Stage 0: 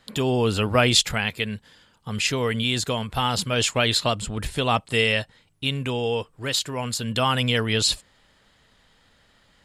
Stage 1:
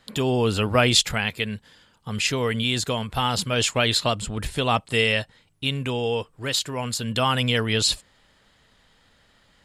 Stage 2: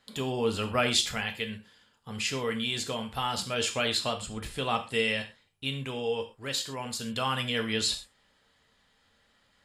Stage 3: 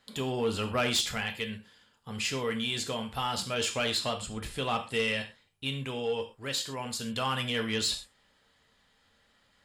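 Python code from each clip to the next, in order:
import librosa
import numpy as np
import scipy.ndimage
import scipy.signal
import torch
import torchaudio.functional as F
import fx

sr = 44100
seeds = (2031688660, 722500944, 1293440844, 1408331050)

y1 = x
y2 = fx.low_shelf(y1, sr, hz=190.0, db=-5.0)
y2 = fx.rev_gated(y2, sr, seeds[0], gate_ms=150, shape='falling', drr_db=4.5)
y2 = F.gain(torch.from_numpy(y2), -8.0).numpy()
y3 = 10.0 ** (-20.0 / 20.0) * np.tanh(y2 / 10.0 ** (-20.0 / 20.0))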